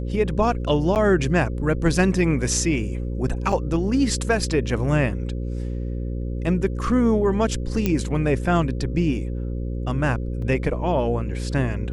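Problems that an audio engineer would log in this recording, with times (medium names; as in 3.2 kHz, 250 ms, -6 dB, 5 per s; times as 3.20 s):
buzz 60 Hz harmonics 9 -27 dBFS
0.95–0.96 s: dropout 8.8 ms
3.52 s: dropout 4.6 ms
7.86 s: pop -8 dBFS
10.42 s: dropout 3.4 ms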